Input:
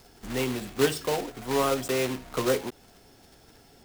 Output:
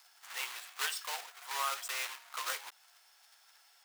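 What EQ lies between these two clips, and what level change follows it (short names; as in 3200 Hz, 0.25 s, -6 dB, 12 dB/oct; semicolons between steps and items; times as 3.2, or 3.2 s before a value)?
HPF 960 Hz 24 dB/oct; -4.0 dB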